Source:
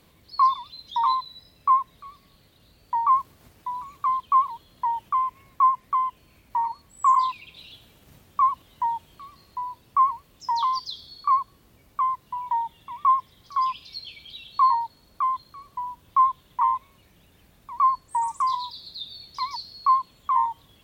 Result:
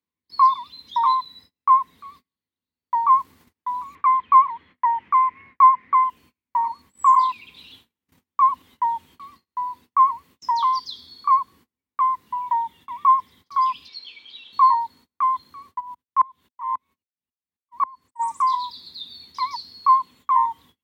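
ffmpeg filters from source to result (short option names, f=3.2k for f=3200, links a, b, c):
-filter_complex "[0:a]asettb=1/sr,asplit=3[a][b][c];[a]atrim=end=3.954[d];[b]atrim=start=3.95:end=6.04,asetpts=PTS-STARTPTS,afade=t=in:d=0.004:c=qsin,afade=t=out:st=2.086:d=0.004:c=qsin,lowpass=f=2.1k:t=q:w=3.1[e];[c]atrim=start=6.036[f];[d][e]acrossfade=d=0.004:c1=hsin:c2=qsin[g];[g][f]acrossfade=d=0.004:c1=qsin:c2=hsin,asettb=1/sr,asplit=3[h][i][j];[h]atrim=end=13.884[k];[i]atrim=start=13.88:end=14.53,asetpts=PTS-STARTPTS,afade=t=in:d=0.004:c=qsin,afade=t=out:st=0.646:d=0.004:c=qsin,acrossover=split=330 6700:gain=0.158 1 0.0891[l][m][n];[l][m][n]amix=inputs=3:normalize=0[o];[j]atrim=start=14.526[p];[k][o]acrossfade=d=0.004:c1=hsin:c2=qsin[q];[q][p]acrossfade=d=0.004:c1=qsin:c2=hsin,asplit=3[r][s][t];[r]afade=t=out:st=15.79:d=0.02[u];[s]aeval=exprs='val(0)*pow(10,-31*if(lt(mod(-3.7*n/s,1),2*abs(-3.7)/1000),1-mod(-3.7*n/s,1)/(2*abs(-3.7)/1000),(mod(-3.7*n/s,1)-2*abs(-3.7)/1000)/(1-2*abs(-3.7)/1000))/20)':c=same,afade=t=in:st=15.79:d=0.02,afade=t=out:st=18.19:d=0.02[v];[t]afade=t=in:st=18.19:d=0.02[w];[u][v][w]amix=inputs=3:normalize=0,highpass=f=71:w=0.5412,highpass=f=71:w=1.3066,agate=range=-34dB:threshold=-50dB:ratio=16:detection=peak,equalizer=f=125:t=o:w=0.33:g=-12,equalizer=f=250:t=o:w=0.33:g=7,equalizer=f=630:t=o:w=0.33:g=-10,equalizer=f=1k:t=o:w=0.33:g=5,equalizer=f=2k:t=o:w=0.33:g=5"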